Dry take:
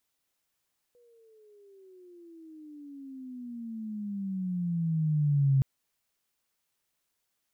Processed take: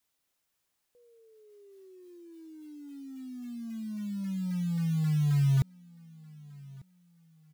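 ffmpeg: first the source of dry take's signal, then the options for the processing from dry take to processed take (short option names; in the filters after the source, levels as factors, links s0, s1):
-f lavfi -i "aevalsrc='pow(10,(-19.5+39*(t/4.67-1))/20)*sin(2*PI*488*4.67/(-22.5*log(2)/12)*(exp(-22.5*log(2)/12*t/4.67)-1))':d=4.67:s=44100"
-af "adynamicequalizer=threshold=0.00158:dfrequency=430:dqfactor=3.2:tfrequency=430:tqfactor=3.2:attack=5:release=100:ratio=0.375:range=2:mode=boostabove:tftype=bell,acrusher=bits=5:mode=log:mix=0:aa=0.000001,aecho=1:1:1196|2392:0.0708|0.0241"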